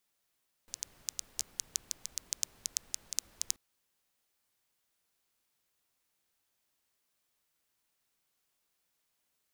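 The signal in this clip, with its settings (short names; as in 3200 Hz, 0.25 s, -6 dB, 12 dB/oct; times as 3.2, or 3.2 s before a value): rain from filtered ticks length 2.88 s, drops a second 7.1, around 6300 Hz, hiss -20.5 dB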